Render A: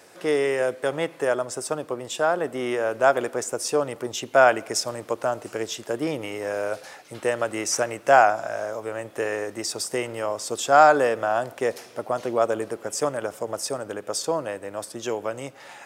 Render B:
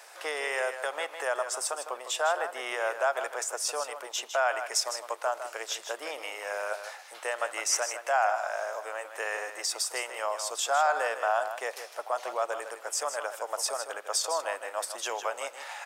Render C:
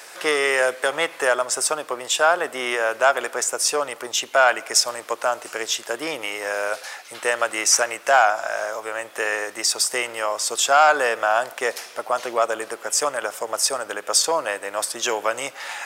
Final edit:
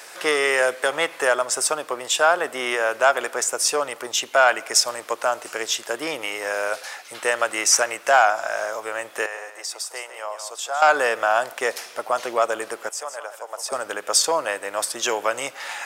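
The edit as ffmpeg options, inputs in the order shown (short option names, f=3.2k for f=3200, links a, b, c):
-filter_complex "[1:a]asplit=2[a][b];[2:a]asplit=3[c][d][e];[c]atrim=end=9.262[f];[a]atrim=start=9.258:end=10.822[g];[d]atrim=start=10.818:end=12.892[h];[b]atrim=start=12.888:end=13.722[i];[e]atrim=start=13.718[j];[f][g]acrossfade=d=0.004:c1=hsin:c2=hsin[k];[k][h]acrossfade=d=0.004:c1=hsin:c2=hsin[l];[l][i]acrossfade=d=0.004:c1=hsin:c2=hsin[m];[m][j]acrossfade=d=0.004:c1=hsin:c2=hsin"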